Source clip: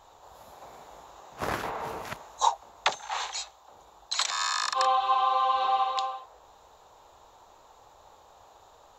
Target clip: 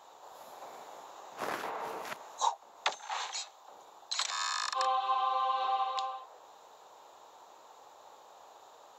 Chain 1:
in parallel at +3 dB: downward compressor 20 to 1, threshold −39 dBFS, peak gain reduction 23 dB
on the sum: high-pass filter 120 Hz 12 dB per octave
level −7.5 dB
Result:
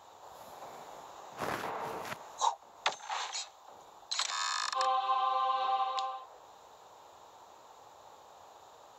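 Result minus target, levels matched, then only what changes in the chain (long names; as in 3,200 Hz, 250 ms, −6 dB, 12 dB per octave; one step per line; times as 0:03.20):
125 Hz band +8.5 dB
change: high-pass filter 260 Hz 12 dB per octave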